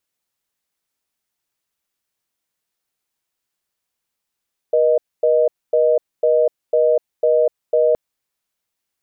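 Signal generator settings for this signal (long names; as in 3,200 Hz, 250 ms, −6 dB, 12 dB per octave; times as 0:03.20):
call progress tone reorder tone, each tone −14.5 dBFS 3.22 s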